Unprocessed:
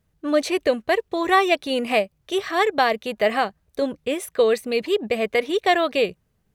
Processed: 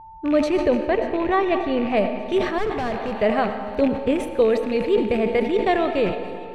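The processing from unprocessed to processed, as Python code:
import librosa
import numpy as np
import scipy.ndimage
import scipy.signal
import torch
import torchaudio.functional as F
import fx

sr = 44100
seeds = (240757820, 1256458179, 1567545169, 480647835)

p1 = fx.rattle_buzz(x, sr, strikes_db=-35.0, level_db=-19.0)
p2 = fx.rider(p1, sr, range_db=10, speed_s=0.5)
p3 = p1 + (p2 * 10.0 ** (-0.5 / 20.0))
p4 = fx.air_absorb(p3, sr, metres=120.0, at=(0.68, 1.97))
p5 = p4 + fx.echo_wet_highpass(p4, sr, ms=293, feedback_pct=82, hz=3800.0, wet_db=-17.0, dry=0)
p6 = fx.rev_freeverb(p5, sr, rt60_s=2.5, hf_ratio=0.75, predelay_ms=45, drr_db=8.0)
p7 = p6 + 10.0 ** (-32.0 / 20.0) * np.sin(2.0 * np.pi * 890.0 * np.arange(len(p6)) / sr)
p8 = fx.clip_hard(p7, sr, threshold_db=-16.0, at=(2.58, 3.14))
p9 = fx.riaa(p8, sr, side='playback')
p10 = fx.sustainer(p9, sr, db_per_s=82.0)
y = p10 * 10.0 ** (-8.5 / 20.0)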